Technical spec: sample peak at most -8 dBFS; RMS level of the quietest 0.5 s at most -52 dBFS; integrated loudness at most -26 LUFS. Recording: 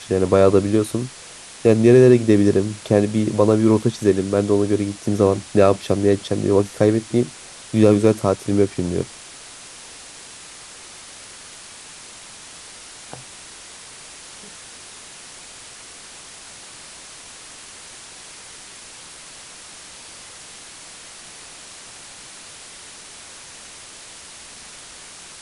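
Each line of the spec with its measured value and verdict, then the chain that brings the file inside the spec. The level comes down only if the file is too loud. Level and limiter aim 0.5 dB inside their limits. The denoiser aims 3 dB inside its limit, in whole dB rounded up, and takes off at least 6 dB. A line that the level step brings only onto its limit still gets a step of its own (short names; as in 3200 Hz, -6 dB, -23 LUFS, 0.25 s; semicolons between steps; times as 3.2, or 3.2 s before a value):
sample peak -2.0 dBFS: fail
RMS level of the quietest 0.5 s -40 dBFS: fail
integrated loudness -18.0 LUFS: fail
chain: denoiser 7 dB, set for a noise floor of -40 dBFS; gain -8.5 dB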